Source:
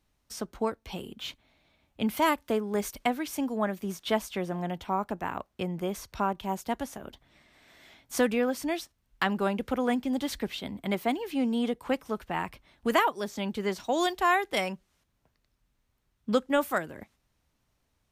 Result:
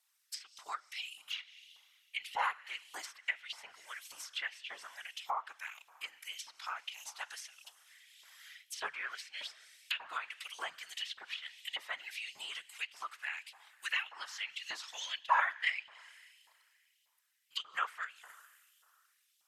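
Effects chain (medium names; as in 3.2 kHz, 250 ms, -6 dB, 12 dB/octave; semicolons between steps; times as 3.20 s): pre-emphasis filter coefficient 0.97; phaser 1.7 Hz, delay 4.2 ms, feedback 35%; tape speed -7%; Schroeder reverb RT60 2.5 s, combs from 31 ms, DRR 17.5 dB; LFO high-pass saw up 1.7 Hz 890–3300 Hz; whisper effect; low-pass that closes with the level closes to 2.1 kHz, closed at -37.5 dBFS; trim +5 dB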